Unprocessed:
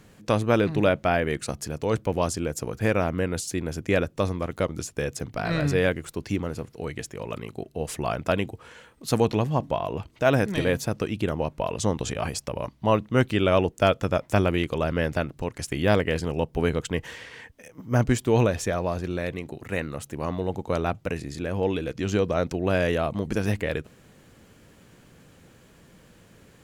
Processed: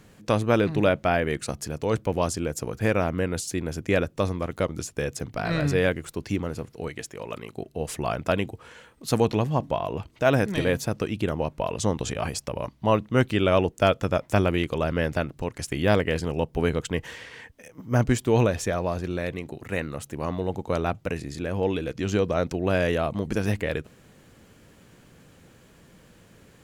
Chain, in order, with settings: 6.88–7.57 low shelf 200 Hz -8 dB

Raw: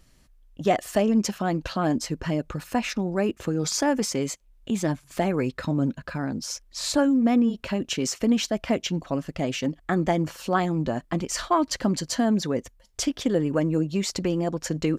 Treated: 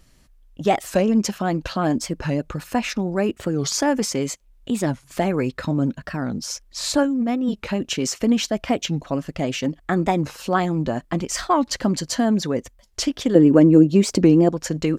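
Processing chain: 7.03–7.55 negative-ratio compressor -24 dBFS, ratio -1; 13.35–14.49 bell 300 Hz +10.5 dB 1.7 oct; record warp 45 rpm, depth 160 cents; gain +3 dB

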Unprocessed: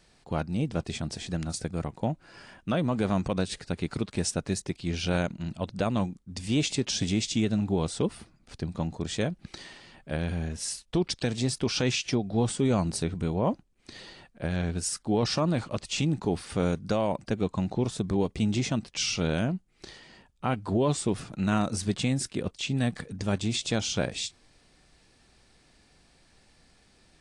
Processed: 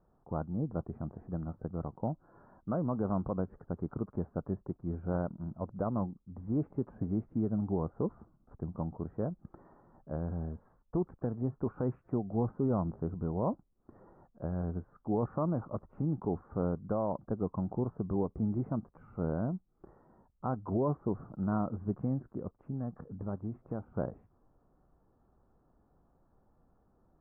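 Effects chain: steep low-pass 1300 Hz 48 dB/oct; 22.34–23.95 compressor 2:1, threshold -31 dBFS, peak gain reduction 5.5 dB; gain -5.5 dB

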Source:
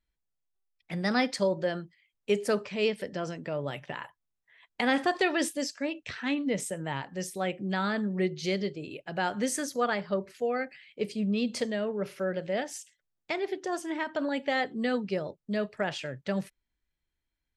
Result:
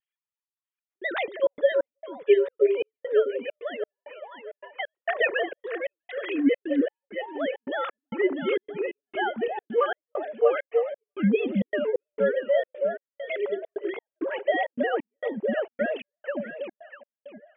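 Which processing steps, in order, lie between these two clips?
sine-wave speech; vibrato 2 Hz 56 cents; on a send: echo with dull and thin repeats by turns 0.323 s, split 900 Hz, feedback 54%, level -2.5 dB; on the sum: step gate "xxxx.xx.." 133 bpm -60 dB; gain +3.5 dB

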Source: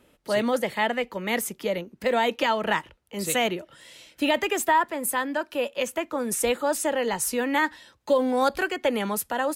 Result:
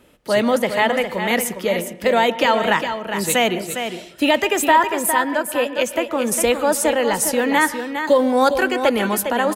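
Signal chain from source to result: echo 0.407 s -8 dB; reverb RT60 0.50 s, pre-delay 0.108 s, DRR 15.5 dB; gain +6.5 dB

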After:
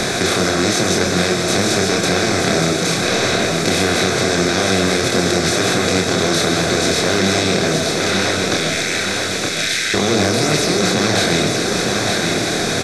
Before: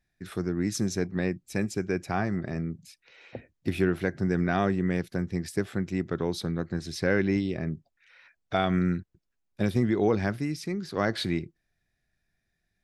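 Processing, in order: per-bin compression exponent 0.2; in parallel at 0 dB: limiter -11 dBFS, peak gain reduction 9 dB; 8.54–9.94 on the sum: inverse Chebyshev high-pass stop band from 900 Hz, stop band 40 dB; on a send at -5.5 dB: reverb RT60 0.65 s, pre-delay 95 ms; on the sum: chorus voices 6, 0.79 Hz, delay 27 ms, depth 5 ms; bell 2600 Hz +2.5 dB 0.69 oct; feedback echo 0.917 s, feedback 29%, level -7 dB; 6.72–7.2 overloaded stage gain 7 dB; bell 7400 Hz +9.5 dB 2.9 oct; three-band squash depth 70%; gain -2 dB

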